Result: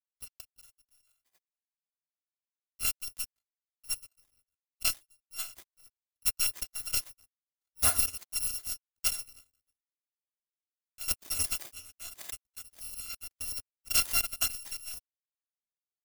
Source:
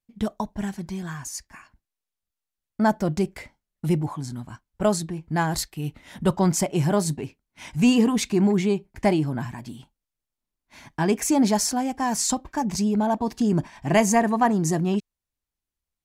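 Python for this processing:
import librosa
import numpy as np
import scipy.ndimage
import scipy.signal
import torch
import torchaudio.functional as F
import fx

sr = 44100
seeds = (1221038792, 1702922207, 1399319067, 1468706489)

y = fx.bit_reversed(x, sr, seeds[0], block=256)
y = fx.power_curve(y, sr, exponent=3.0)
y = F.gain(torch.from_numpy(y), -3.0).numpy()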